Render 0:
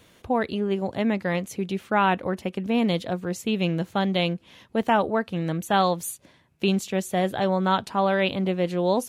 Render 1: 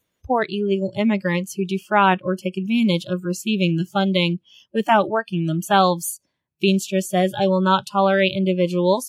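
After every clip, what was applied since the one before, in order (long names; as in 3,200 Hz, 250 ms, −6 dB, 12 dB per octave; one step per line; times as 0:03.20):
noise reduction from a noise print of the clip's start 25 dB
level +5.5 dB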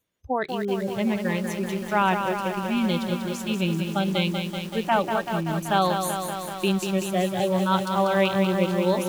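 feedback echo at a low word length 191 ms, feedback 80%, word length 6 bits, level −6 dB
level −6 dB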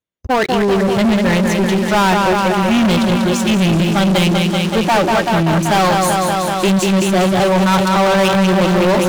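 Bessel low-pass filter 7,000 Hz, order 2
leveller curve on the samples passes 5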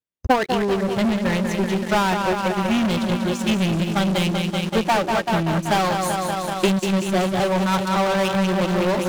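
transient designer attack +9 dB, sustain −12 dB
level −7.5 dB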